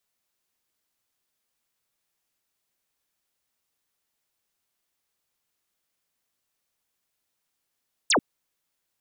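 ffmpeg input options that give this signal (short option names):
-f lavfi -i "aevalsrc='0.133*clip(t/0.002,0,1)*clip((0.09-t)/0.002,0,1)*sin(2*PI*9400*0.09/log(190/9400)*(exp(log(190/9400)*t/0.09)-1))':d=0.09:s=44100"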